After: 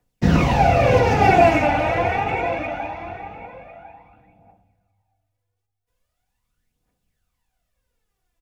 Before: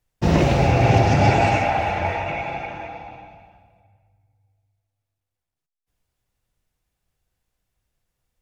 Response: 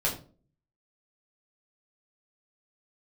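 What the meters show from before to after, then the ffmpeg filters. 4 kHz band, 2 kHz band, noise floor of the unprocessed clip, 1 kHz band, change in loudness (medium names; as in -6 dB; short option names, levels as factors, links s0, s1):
-0.5 dB, +2.5 dB, -84 dBFS, +3.0 dB, +1.5 dB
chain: -filter_complex "[0:a]aecho=1:1:4.1:0.36,acrossover=split=110|2800[s0][s1][s2];[s1]aphaser=in_gain=1:out_gain=1:delay=3.5:decay=0.72:speed=0.29:type=triangular[s3];[s2]asoftclip=type=tanh:threshold=0.02[s4];[s0][s3][s4]amix=inputs=3:normalize=0,asplit=2[s5][s6];[s6]adelay=1050,volume=0.282,highshelf=f=4000:g=-23.6[s7];[s5][s7]amix=inputs=2:normalize=0"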